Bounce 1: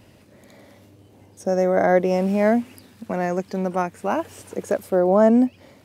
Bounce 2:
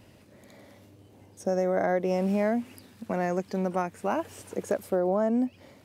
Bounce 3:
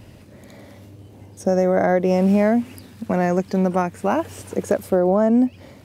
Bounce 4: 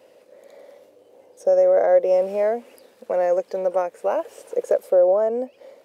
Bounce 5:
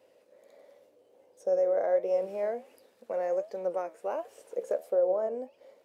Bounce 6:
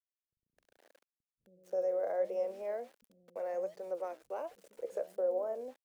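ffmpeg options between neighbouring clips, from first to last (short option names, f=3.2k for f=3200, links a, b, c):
-af "acompressor=threshold=-18dB:ratio=6,volume=-3.5dB"
-af "lowshelf=f=160:g=8.5,volume=7dB"
-af "highpass=f=510:t=q:w=5.7,volume=-8.5dB"
-af "flanger=delay=8.9:depth=6.9:regen=73:speed=1.4:shape=triangular,volume=-6dB"
-filter_complex "[0:a]aeval=exprs='val(0)*gte(abs(val(0)),0.00282)':c=same,acrossover=split=200[a][b];[b]adelay=260[c];[a][c]amix=inputs=2:normalize=0,volume=-6.5dB"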